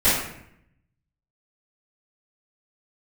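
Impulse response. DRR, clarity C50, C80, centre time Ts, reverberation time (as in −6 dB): −17.0 dB, 0.5 dB, 5.0 dB, 59 ms, 0.70 s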